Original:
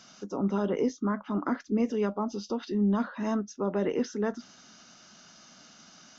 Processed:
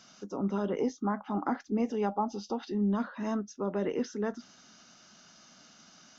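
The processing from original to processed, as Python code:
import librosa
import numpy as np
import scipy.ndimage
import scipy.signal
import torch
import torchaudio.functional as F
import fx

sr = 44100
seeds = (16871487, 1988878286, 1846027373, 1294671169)

y = fx.peak_eq(x, sr, hz=800.0, db=15.0, octaves=0.22, at=(0.79, 2.78))
y = F.gain(torch.from_numpy(y), -3.0).numpy()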